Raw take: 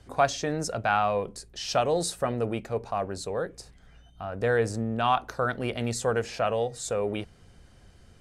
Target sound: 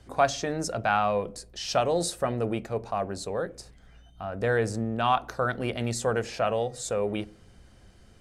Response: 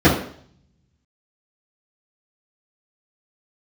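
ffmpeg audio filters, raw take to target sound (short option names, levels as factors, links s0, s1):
-filter_complex "[0:a]asplit=2[s0][s1];[1:a]atrim=start_sample=2205[s2];[s1][s2]afir=irnorm=-1:irlink=0,volume=0.00668[s3];[s0][s3]amix=inputs=2:normalize=0"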